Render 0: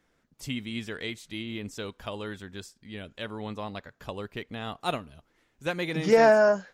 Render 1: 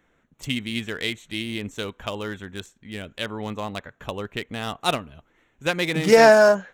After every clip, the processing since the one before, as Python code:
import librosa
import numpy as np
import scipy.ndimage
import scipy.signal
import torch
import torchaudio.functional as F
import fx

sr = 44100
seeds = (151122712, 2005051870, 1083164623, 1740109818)

y = fx.wiener(x, sr, points=9)
y = fx.high_shelf(y, sr, hz=2700.0, db=10.5)
y = y * 10.0 ** (5.0 / 20.0)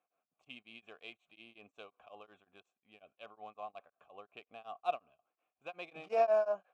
y = fx.vowel_filter(x, sr, vowel='a')
y = y * np.abs(np.cos(np.pi * 5.5 * np.arange(len(y)) / sr))
y = y * 10.0 ** (-5.5 / 20.0)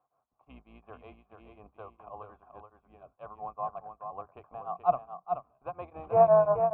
y = fx.octave_divider(x, sr, octaves=2, level_db=1.0)
y = fx.lowpass_res(y, sr, hz=1000.0, q=3.8)
y = y + 10.0 ** (-6.5 / 20.0) * np.pad(y, (int(430 * sr / 1000.0), 0))[:len(y)]
y = y * 10.0 ** (3.5 / 20.0)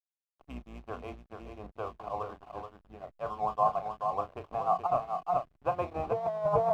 y = fx.doubler(x, sr, ms=33.0, db=-9.5)
y = fx.over_compress(y, sr, threshold_db=-31.0, ratio=-1.0)
y = fx.backlash(y, sr, play_db=-50.5)
y = y * 10.0 ** (3.5 / 20.0)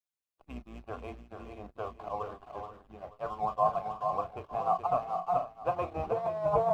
y = fx.spec_quant(x, sr, step_db=15)
y = y + 10.0 ** (-12.0 / 20.0) * np.pad(y, (int(481 * sr / 1000.0), 0))[:len(y)]